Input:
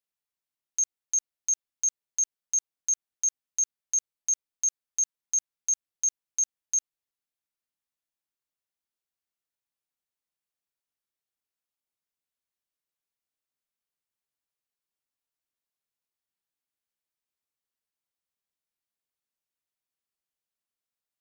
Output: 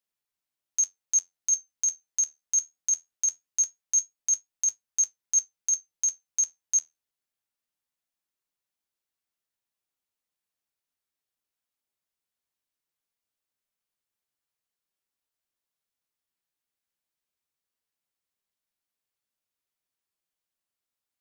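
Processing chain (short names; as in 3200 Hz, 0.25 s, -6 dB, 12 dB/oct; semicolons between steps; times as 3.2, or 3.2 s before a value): flange 0.21 Hz, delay 9.1 ms, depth 4 ms, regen +66%; gain +6 dB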